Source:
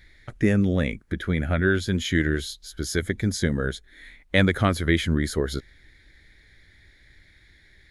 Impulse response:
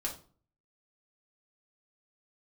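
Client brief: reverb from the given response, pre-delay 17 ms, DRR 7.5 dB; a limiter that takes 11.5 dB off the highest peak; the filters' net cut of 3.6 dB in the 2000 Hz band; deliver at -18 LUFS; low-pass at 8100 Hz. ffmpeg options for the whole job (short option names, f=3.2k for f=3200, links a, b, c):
-filter_complex "[0:a]lowpass=8.1k,equalizer=f=2k:t=o:g=-4.5,alimiter=limit=-16dB:level=0:latency=1,asplit=2[a][b];[1:a]atrim=start_sample=2205,adelay=17[c];[b][c]afir=irnorm=-1:irlink=0,volume=-9.5dB[d];[a][d]amix=inputs=2:normalize=0,volume=9.5dB"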